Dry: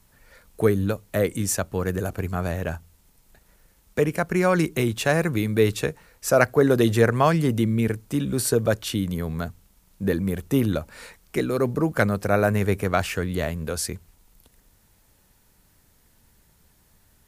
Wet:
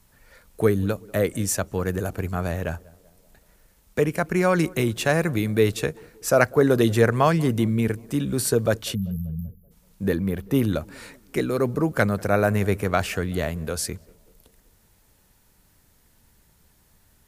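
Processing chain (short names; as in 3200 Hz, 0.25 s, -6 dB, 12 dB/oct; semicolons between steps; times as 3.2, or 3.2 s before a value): 8.95–9.71 spectral delete 230–11000 Hz; 10.15–10.55 bell 7800 Hz -9.5 dB 1 oct; tape echo 0.192 s, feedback 63%, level -22.5 dB, low-pass 1100 Hz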